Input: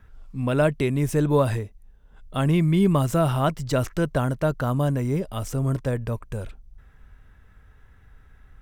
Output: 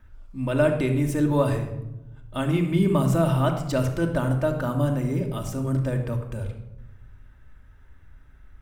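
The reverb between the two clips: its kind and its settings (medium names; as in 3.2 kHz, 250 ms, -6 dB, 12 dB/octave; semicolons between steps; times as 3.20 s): simulated room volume 3300 m³, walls furnished, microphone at 2.6 m; trim -3.5 dB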